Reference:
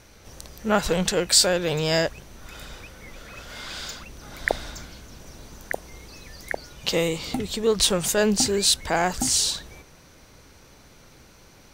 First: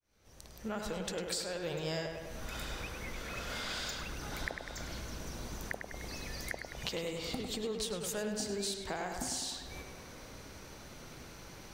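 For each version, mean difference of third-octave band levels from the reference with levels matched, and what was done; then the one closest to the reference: 10.0 dB: opening faded in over 1.70 s; compressor 10:1, threshold -36 dBFS, peak gain reduction 21.5 dB; tape echo 0.102 s, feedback 72%, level -4.5 dB, low-pass 3300 Hz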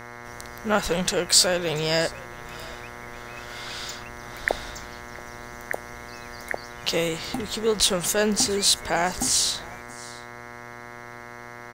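4.5 dB: buzz 120 Hz, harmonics 18, -40 dBFS -1 dB/oct; low shelf 450 Hz -3.5 dB; echo 0.678 s -21.5 dB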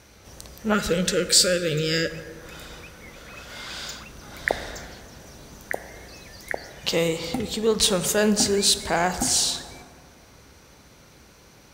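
2.0 dB: HPF 44 Hz; spectral gain 0.74–2.1, 590–1200 Hz -25 dB; plate-style reverb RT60 2.2 s, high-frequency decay 0.4×, DRR 10 dB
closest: third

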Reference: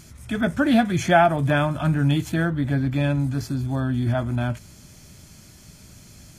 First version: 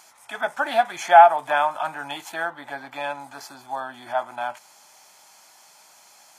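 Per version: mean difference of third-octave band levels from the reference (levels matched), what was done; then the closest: 8.0 dB: resonant high-pass 840 Hz, resonance Q 4.7; gain -2 dB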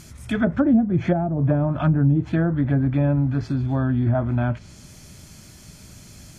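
5.0 dB: treble ducked by the level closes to 320 Hz, closed at -14.5 dBFS; gain +2.5 dB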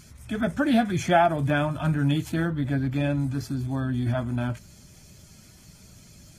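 1.0 dB: bin magnitudes rounded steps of 15 dB; gain -3 dB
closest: third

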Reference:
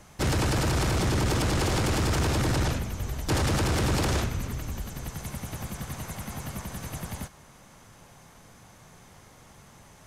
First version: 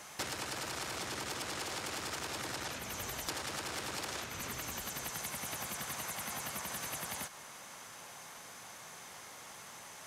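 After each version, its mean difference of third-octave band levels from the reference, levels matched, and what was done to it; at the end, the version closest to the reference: 9.0 dB: HPF 990 Hz 6 dB/oct; compressor 12:1, threshold -43 dBFS, peak gain reduction 15.5 dB; gain +6.5 dB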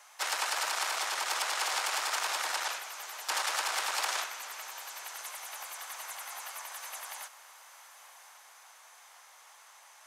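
14.0 dB: HPF 790 Hz 24 dB/oct; diffused feedback echo 1.06 s, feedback 45%, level -16 dB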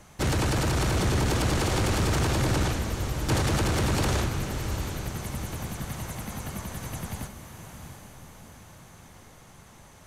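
2.0 dB: notch 5100 Hz, Q 21; diffused feedback echo 0.739 s, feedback 49%, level -9 dB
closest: third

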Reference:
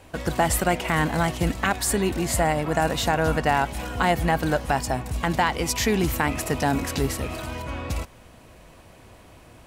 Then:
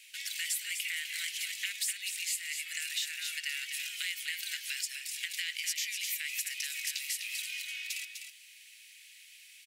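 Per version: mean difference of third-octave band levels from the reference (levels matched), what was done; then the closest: 24.5 dB: steep high-pass 2100 Hz 48 dB/oct; compressor 4:1, threshold -37 dBFS, peak gain reduction 13.5 dB; echo 0.251 s -7 dB; gain +3.5 dB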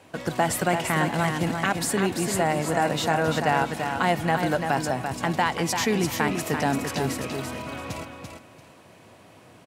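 3.0 dB: HPF 110 Hz 24 dB/oct; high shelf 12000 Hz -7 dB; on a send: feedback echo 0.34 s, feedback 22%, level -6 dB; on the sum: gain -1.5 dB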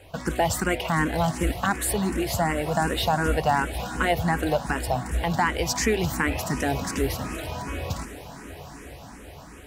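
4.5 dB: in parallel at -11 dB: soft clip -21.5 dBFS, distortion -9 dB; on the sum: diffused feedback echo 0.926 s, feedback 60%, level -14.5 dB; endless phaser +2.7 Hz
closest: second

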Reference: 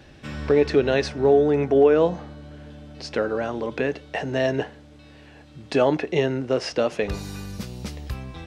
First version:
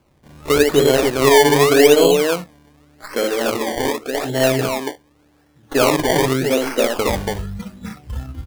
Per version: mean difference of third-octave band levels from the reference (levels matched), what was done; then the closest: 10.5 dB: tracing distortion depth 0.061 ms; on a send: loudspeakers at several distances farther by 21 m -4 dB, 97 m -3 dB; on the sum: decimation with a swept rate 23×, swing 100% 0.86 Hz; spectral noise reduction 14 dB; gain +3 dB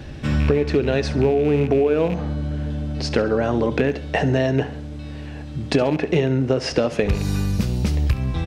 5.0 dB: rattling part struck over -28 dBFS, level -24 dBFS; low shelf 250 Hz +10 dB; compressor 10:1, threshold -22 dBFS, peak gain reduction 13.5 dB; feedback echo 68 ms, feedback 48%, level -16 dB; gain +7 dB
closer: second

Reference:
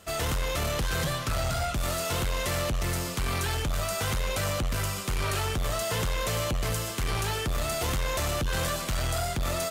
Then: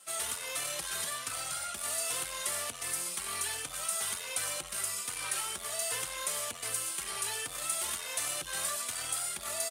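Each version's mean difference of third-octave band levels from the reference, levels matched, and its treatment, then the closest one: 8.0 dB: HPF 1300 Hz 6 dB/oct; bell 9300 Hz +13 dB 0.46 oct; endless flanger 3.3 ms +1.3 Hz; gain -1.5 dB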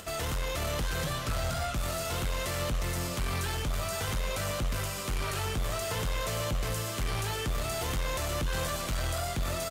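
1.0 dB: upward compressor, threshold -40 dBFS; limiter -27.5 dBFS, peak gain reduction 6 dB; echo 0.494 s -9.5 dB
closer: second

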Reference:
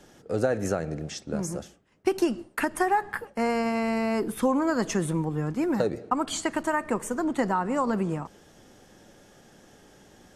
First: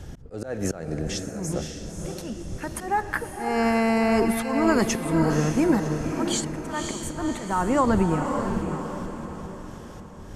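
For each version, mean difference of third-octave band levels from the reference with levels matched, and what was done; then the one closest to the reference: 8.0 dB: wind noise 96 Hz -42 dBFS; auto swell 0.273 s; on a send: diffused feedback echo 0.551 s, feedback 48%, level -5.5 dB; on the sum: gain +5 dB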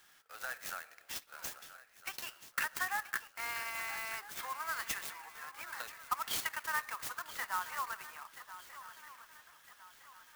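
14.5 dB: HPF 1200 Hz 24 dB/oct; on a send: swung echo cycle 1.307 s, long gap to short 3:1, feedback 41%, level -14 dB; on the sum: clock jitter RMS 0.036 ms; gain -3 dB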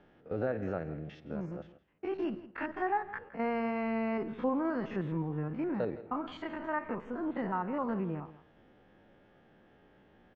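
6.0 dB: stepped spectrum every 50 ms; LPF 2900 Hz 24 dB/oct; on a send: echo 0.164 s -16.5 dB; on the sum: gain -6.5 dB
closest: third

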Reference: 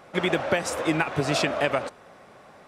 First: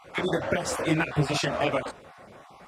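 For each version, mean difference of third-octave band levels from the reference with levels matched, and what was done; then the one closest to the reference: 3.0 dB: random spectral dropouts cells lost 20%; bell 64 Hz +6.5 dB 2.3 oct; in parallel at -0.5 dB: compressor, threshold -30 dBFS, peak gain reduction 12 dB; on the sum: detuned doubles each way 38 cents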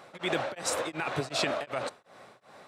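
5.0 dB: low shelf 170 Hz -11 dB; limiter -16 dBFS, peak gain reduction 8 dB; thirty-one-band EQ 125 Hz +7 dB, 4000 Hz +6 dB, 8000 Hz +3 dB; beating tremolo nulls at 2.7 Hz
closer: first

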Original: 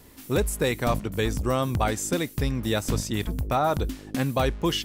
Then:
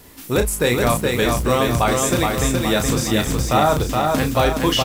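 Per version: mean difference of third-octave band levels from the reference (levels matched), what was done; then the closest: 6.0 dB: low shelf 470 Hz -3.5 dB; doubler 33 ms -7 dB; lo-fi delay 0.42 s, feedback 55%, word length 8-bit, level -3 dB; gain +7 dB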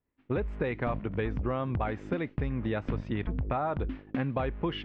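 10.0 dB: expander -32 dBFS; LPF 2500 Hz 24 dB/oct; compressor, threshold -27 dBFS, peak gain reduction 8 dB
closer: first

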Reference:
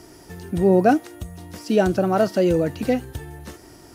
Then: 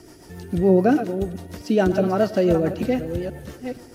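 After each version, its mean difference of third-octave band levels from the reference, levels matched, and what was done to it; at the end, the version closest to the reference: 4.0 dB: reverse delay 0.472 s, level -10 dB; dynamic EQ 8700 Hz, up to -5 dB, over -51 dBFS, Q 0.92; rotary speaker horn 7 Hz; tape echo 0.107 s, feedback 72%, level -18 dB, low-pass 4400 Hz; gain +1.5 dB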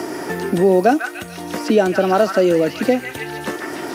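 7.5 dB: HPF 250 Hz 12 dB/oct; on a send: delay with a stepping band-pass 0.146 s, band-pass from 1700 Hz, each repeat 0.7 oct, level -1.5 dB; on the sum: three-band squash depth 70%; gain +5 dB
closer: first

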